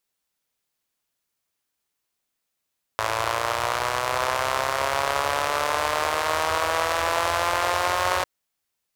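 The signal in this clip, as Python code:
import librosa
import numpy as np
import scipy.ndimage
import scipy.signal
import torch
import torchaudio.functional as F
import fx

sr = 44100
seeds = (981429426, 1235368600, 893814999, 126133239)

y = fx.engine_four_rev(sr, seeds[0], length_s=5.25, rpm=3300, resonances_hz=(84.0, 640.0, 990.0), end_rpm=5500)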